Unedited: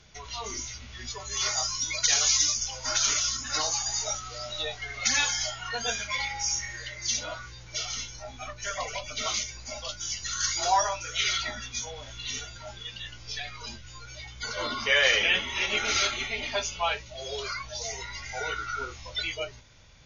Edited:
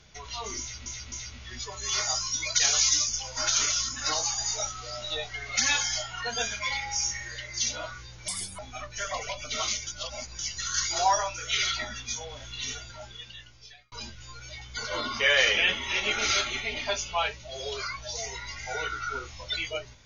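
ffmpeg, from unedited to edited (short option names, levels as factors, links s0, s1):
-filter_complex "[0:a]asplit=8[s0][s1][s2][s3][s4][s5][s6][s7];[s0]atrim=end=0.862[s8];[s1]atrim=start=0.598:end=0.862[s9];[s2]atrim=start=0.598:end=7.764[s10];[s3]atrim=start=7.76:end=8.25,asetpts=PTS-STARTPTS,asetrate=70119,aresample=44100[s11];[s4]atrim=start=8.246:end=9.532[s12];[s5]atrim=start=9.528:end=10.052,asetpts=PTS-STARTPTS,areverse[s13];[s6]atrim=start=10.048:end=13.58,asetpts=PTS-STARTPTS,afade=t=out:st=2.442:d=1.09[s14];[s7]atrim=start=13.58,asetpts=PTS-STARTPTS,afade=t=in:d=0.004:c=hsin[s15];[s8][s9]acrossfade=d=0.004:c1=hsin:c2=hsin[s16];[s16][s10]acrossfade=d=0.004:c1=hsin:c2=hsin[s17];[s17][s11]acrossfade=d=0.004:c1=hsin:c2=hsin[s18];[s18][s12]acrossfade=d=0.004:c1=hsin:c2=hsin[s19];[s19][s13]acrossfade=d=0.004:c1=hsin:c2=hsin[s20];[s14][s15]concat=n=2:v=0:a=1[s21];[s20][s21]acrossfade=d=0.004:c1=hsin:c2=hsin"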